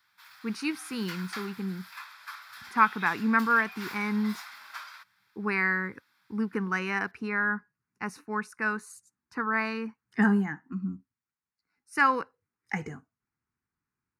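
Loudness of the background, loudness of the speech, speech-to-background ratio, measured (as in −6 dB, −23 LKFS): −43.5 LKFS, −29.5 LKFS, 14.0 dB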